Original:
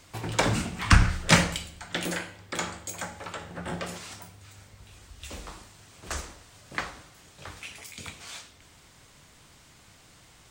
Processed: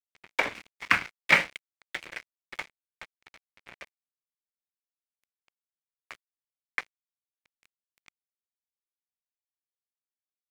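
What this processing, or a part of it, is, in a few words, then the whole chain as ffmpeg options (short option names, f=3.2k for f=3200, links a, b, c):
pocket radio on a weak battery: -af "highpass=340,lowpass=3.3k,aeval=exprs='sgn(val(0))*max(abs(val(0))-0.0282,0)':c=same,equalizer=f=2.2k:t=o:w=0.58:g=11.5,volume=-2dB"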